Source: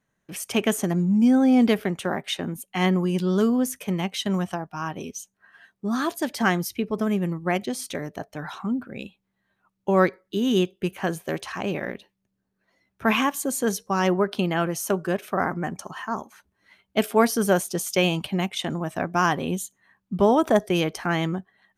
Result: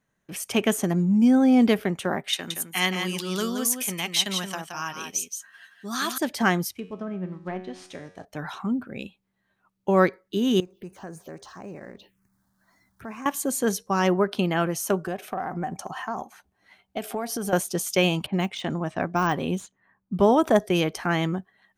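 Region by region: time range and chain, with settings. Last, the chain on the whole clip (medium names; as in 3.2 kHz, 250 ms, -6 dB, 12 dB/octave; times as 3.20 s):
2.33–6.18 s: high-pass 98 Hz + tilt shelf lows -9.5 dB, about 1.3 kHz + delay 172 ms -6.5 dB
6.71–8.25 s: CVSD coder 64 kbps + low-pass that closes with the level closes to 1.8 kHz, closed at -20 dBFS + feedback comb 92 Hz, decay 0.71 s, mix 70%
10.60–13.26 s: companding laws mixed up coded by mu + compression 2:1, threshold -45 dBFS + touch-sensitive phaser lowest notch 390 Hz, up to 3.3 kHz, full sweep at -36.5 dBFS
15.06–17.53 s: peaking EQ 750 Hz +12 dB 0.25 oct + compression 10:1, threshold -25 dBFS
18.26–20.14 s: median filter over 3 samples + level-controlled noise filter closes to 1.1 kHz, open at -21.5 dBFS + de-esser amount 80%
whole clip: none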